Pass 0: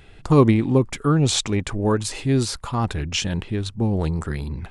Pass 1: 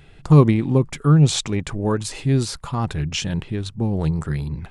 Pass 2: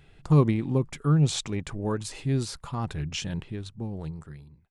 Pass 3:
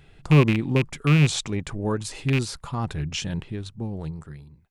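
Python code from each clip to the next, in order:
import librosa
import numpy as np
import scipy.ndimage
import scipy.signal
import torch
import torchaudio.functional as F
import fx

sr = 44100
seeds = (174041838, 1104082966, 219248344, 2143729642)

y1 = fx.peak_eq(x, sr, hz=150.0, db=9.5, octaves=0.3)
y1 = y1 * 10.0 ** (-1.5 / 20.0)
y2 = fx.fade_out_tail(y1, sr, length_s=1.42)
y2 = y2 * 10.0 ** (-7.5 / 20.0)
y3 = fx.rattle_buzz(y2, sr, strikes_db=-24.0, level_db=-18.0)
y3 = y3 * 10.0 ** (3.0 / 20.0)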